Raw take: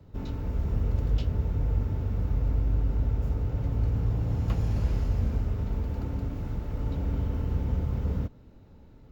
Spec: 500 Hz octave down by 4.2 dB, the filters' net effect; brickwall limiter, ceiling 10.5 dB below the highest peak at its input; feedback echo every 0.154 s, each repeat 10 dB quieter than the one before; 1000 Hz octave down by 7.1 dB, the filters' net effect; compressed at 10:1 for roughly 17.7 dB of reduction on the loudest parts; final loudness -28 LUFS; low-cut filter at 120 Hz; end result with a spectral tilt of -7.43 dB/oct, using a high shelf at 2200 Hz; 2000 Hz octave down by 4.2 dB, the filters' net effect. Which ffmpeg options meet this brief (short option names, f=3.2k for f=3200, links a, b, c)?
-af "highpass=120,equalizer=f=500:t=o:g=-3.5,equalizer=f=1k:t=o:g=-8,equalizer=f=2k:t=o:g=-8,highshelf=f=2.2k:g=9,acompressor=threshold=-48dB:ratio=10,alimiter=level_in=26dB:limit=-24dB:level=0:latency=1,volume=-26dB,aecho=1:1:154|308|462|616:0.316|0.101|0.0324|0.0104,volume=30dB"